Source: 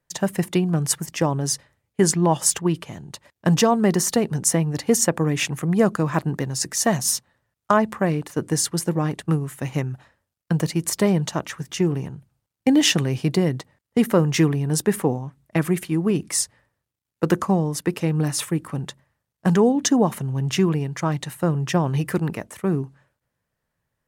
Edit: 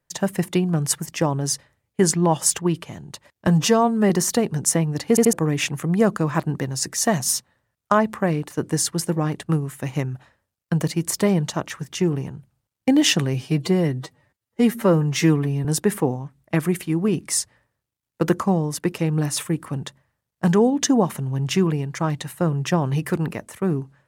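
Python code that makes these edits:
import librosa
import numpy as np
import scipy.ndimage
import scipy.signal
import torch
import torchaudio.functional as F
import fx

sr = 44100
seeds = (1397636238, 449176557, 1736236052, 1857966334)

y = fx.edit(x, sr, fx.stretch_span(start_s=3.47, length_s=0.42, factor=1.5),
    fx.stutter_over(start_s=4.88, slice_s=0.08, count=3),
    fx.stretch_span(start_s=13.13, length_s=1.54, factor=1.5), tone=tone)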